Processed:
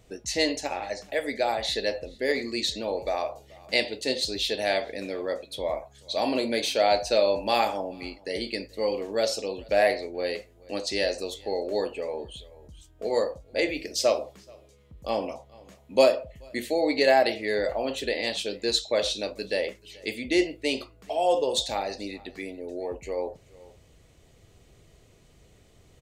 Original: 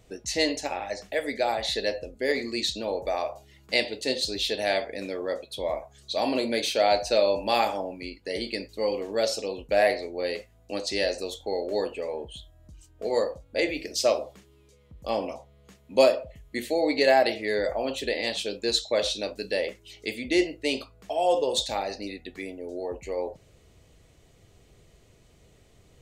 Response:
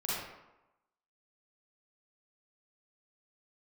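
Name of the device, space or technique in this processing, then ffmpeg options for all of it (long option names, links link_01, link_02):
ducked delay: -filter_complex "[0:a]asplit=3[link_01][link_02][link_03];[link_02]adelay=431,volume=-8dB[link_04];[link_03]apad=whole_len=1166182[link_05];[link_04][link_05]sidechaincompress=threshold=-44dB:ratio=8:attack=16:release=932[link_06];[link_01][link_06]amix=inputs=2:normalize=0"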